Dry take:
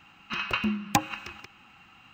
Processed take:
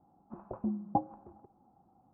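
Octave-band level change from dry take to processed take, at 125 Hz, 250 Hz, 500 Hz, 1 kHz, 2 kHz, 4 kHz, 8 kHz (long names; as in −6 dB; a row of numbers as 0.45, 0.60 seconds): −7.0 dB, −5.0 dB, −2.5 dB, −5.5 dB, below −40 dB, below −40 dB, below −40 dB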